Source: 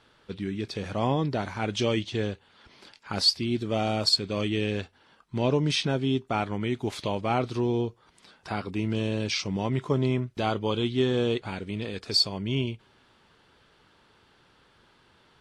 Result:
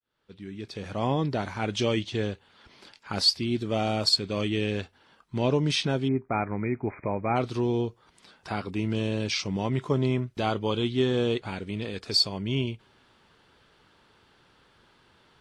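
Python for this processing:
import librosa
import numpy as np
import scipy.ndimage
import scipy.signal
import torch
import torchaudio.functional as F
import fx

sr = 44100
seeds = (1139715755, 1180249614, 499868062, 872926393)

y = fx.fade_in_head(x, sr, length_s=1.2)
y = fx.brickwall_lowpass(y, sr, high_hz=2500.0, at=(6.07, 7.35), fade=0.02)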